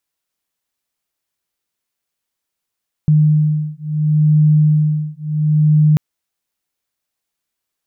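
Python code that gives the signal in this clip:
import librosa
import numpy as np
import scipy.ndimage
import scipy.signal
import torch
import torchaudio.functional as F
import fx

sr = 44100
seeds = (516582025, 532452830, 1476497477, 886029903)

y = fx.two_tone_beats(sr, length_s=2.89, hz=152.0, beat_hz=0.72, level_db=-13.5)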